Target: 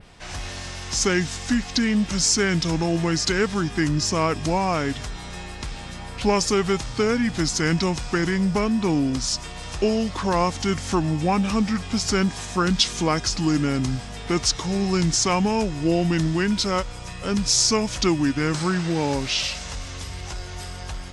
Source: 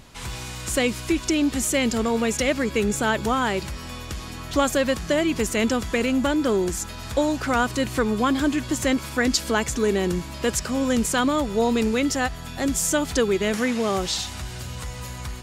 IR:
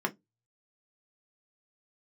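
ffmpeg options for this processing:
-af "adynamicequalizer=threshold=0.00708:dfrequency=9100:dqfactor=1.2:tfrequency=9100:tqfactor=1.2:attack=5:release=100:ratio=0.375:range=3.5:mode=boostabove:tftype=bell,asetrate=32193,aresample=44100"

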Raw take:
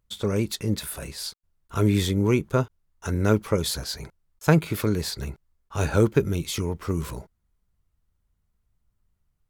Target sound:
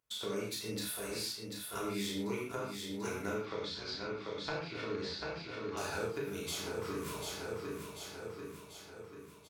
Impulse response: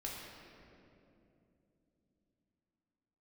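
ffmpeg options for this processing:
-filter_complex "[0:a]highpass=frequency=690:poles=1,asplit=2[link_01][link_02];[link_02]adelay=35,volume=-3dB[link_03];[link_01][link_03]amix=inputs=2:normalize=0,aecho=1:1:740|1480|2220|2960|3700|4440:0.335|0.181|0.0977|0.0527|0.0285|0.0154,acompressor=threshold=-34dB:ratio=6,asettb=1/sr,asplit=3[link_04][link_05][link_06];[link_04]atrim=end=3.354[link_07];[link_05]atrim=start=3.35:end=5.77,asetpts=PTS-STARTPTS,afade=type=in:duration=0.004:curve=qsin,afade=type=out:start_time=2.416:duration=0.004:curve=qsin,lowpass=frequency=4800:width=0.5412,lowpass=frequency=4800:width=1.3066[link_08];[link_06]atrim=start=5.766[link_09];[link_07][link_08]acrossfade=duration=0.004:curve1=hsin:curve2=qsin[link_10];[link_10][link_09]acrossfade=duration=0.004:curve1=qsin:curve2=hsin[link_11];[1:a]atrim=start_sample=2205,atrim=end_sample=6174,asetrate=48510,aresample=44100[link_12];[link_11][link_12]afir=irnorm=-1:irlink=0,volume=1dB"

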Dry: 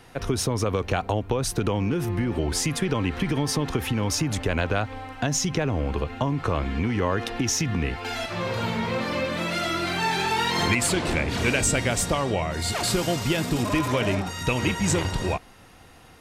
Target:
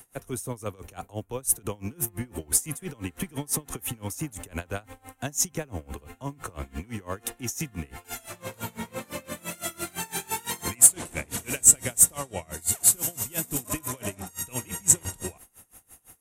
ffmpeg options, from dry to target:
ffmpeg -i in.wav -filter_complex "[0:a]acrossover=split=280|4200[link_01][link_02][link_03];[link_03]aexciter=amount=15.4:drive=2.2:freq=6700[link_04];[link_01][link_02][link_04]amix=inputs=3:normalize=0,aeval=exprs='val(0)*pow(10,-25*(0.5-0.5*cos(2*PI*5.9*n/s))/20)':channel_layout=same,volume=-5dB" out.wav

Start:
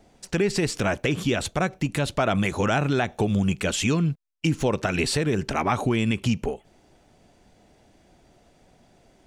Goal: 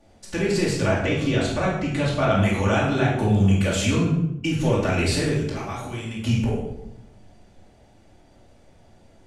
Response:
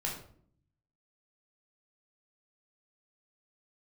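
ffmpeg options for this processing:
-filter_complex "[0:a]asettb=1/sr,asplit=3[link_01][link_02][link_03];[link_01]atrim=end=0.774[link_04];[link_02]atrim=start=0.77:end=2.42,asetpts=PTS-STARTPTS,afade=type=in:duration=0.004:curve=qsin,afade=type=out:start_time=1.646:duration=0.004:curve=qsin,lowpass=6900[link_05];[link_03]atrim=start=2.416[link_06];[link_04][link_05]acrossfade=duration=0.004:curve1=hsin:curve2=qsin[link_07];[link_07][link_06]acrossfade=duration=0.004:curve1=qsin:curve2=hsin,asettb=1/sr,asplit=3[link_08][link_09][link_10];[link_08]atrim=end=5.324[link_11];[link_09]atrim=start=5.32:end=6.17,asetpts=PTS-STARTPTS,afade=type=in:duration=0.004:curve=qsin,afade=type=out:start_time=0.846:duration=0.004:curve=qsin,acrossover=split=1400|3600[link_12][link_13][link_14];[link_12]acompressor=threshold=-35dB:ratio=4[link_15];[link_13]acompressor=threshold=-43dB:ratio=4[link_16];[link_14]acompressor=threshold=-41dB:ratio=4[link_17];[link_15][link_16][link_17]amix=inputs=3:normalize=0[link_18];[link_10]atrim=start=6.166[link_19];[link_11][link_18]acrossfade=duration=0.004:curve1=hsin:curve2=qsin[link_20];[link_20][link_19]acrossfade=duration=0.004:curve1=qsin:curve2=hsin[link_21];[1:a]atrim=start_sample=2205,asetrate=26901,aresample=44100[link_22];[link_21][link_22]afir=irnorm=-1:irlink=0,volume=-5dB"

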